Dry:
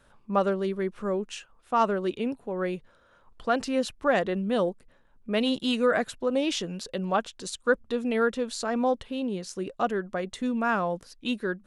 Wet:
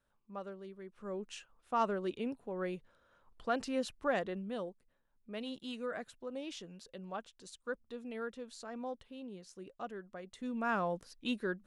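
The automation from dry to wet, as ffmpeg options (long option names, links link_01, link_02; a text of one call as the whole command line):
ffmpeg -i in.wav -af "volume=1.5dB,afade=type=in:start_time=0.89:duration=0.48:silence=0.266073,afade=type=out:start_time=4.02:duration=0.67:silence=0.398107,afade=type=in:start_time=10.29:duration=0.52:silence=0.316228" out.wav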